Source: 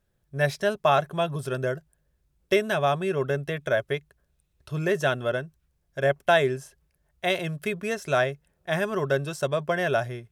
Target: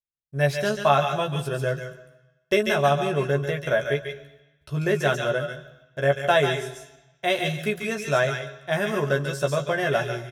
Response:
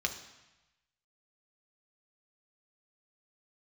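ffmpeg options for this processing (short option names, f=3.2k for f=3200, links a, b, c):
-filter_complex "[0:a]asplit=2[a][b];[b]adelay=14,volume=-4.5dB[c];[a][c]amix=inputs=2:normalize=0,agate=range=-35dB:threshold=-58dB:ratio=16:detection=peak,asplit=2[d][e];[1:a]atrim=start_sample=2205,highshelf=f=4.2k:g=11.5,adelay=141[f];[e][f]afir=irnorm=-1:irlink=0,volume=-12.5dB[g];[d][g]amix=inputs=2:normalize=0"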